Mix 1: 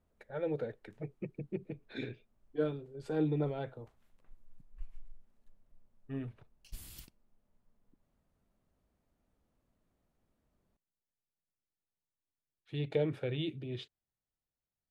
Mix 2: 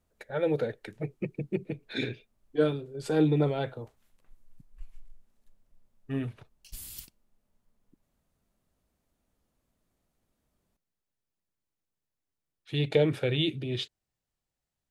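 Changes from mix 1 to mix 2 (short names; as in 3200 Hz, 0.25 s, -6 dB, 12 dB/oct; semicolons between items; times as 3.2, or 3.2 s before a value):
speech +7.5 dB; master: add high shelf 3200 Hz +10.5 dB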